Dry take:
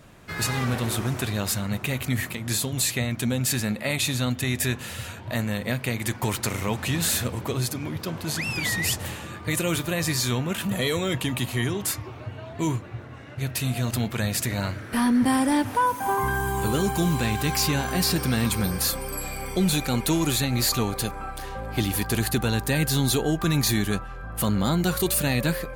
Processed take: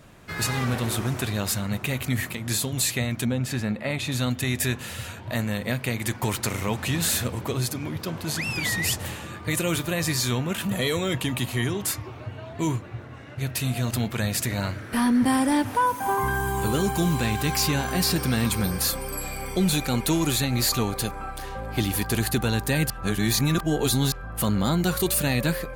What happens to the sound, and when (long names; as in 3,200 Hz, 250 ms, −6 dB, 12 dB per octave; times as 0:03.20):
0:03.25–0:04.12: low-pass filter 2,100 Hz 6 dB per octave
0:22.90–0:24.12: reverse